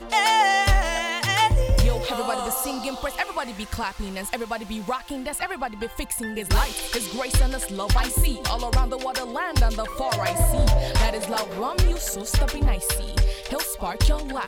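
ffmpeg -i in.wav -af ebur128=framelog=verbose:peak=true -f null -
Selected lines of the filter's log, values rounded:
Integrated loudness:
  I:         -24.3 LUFS
  Threshold: -34.3 LUFS
Loudness range:
  LRA:         5.2 LU
  Threshold: -45.0 LUFS
  LRA low:   -28.5 LUFS
  LRA high:  -23.4 LUFS
True peak:
  Peak:      -10.1 dBFS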